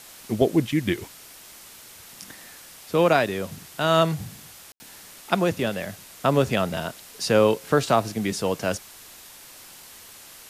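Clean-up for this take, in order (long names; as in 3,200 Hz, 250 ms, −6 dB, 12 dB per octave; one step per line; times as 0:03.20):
ambience match 0:04.72–0:04.80
noise reduction from a noise print 22 dB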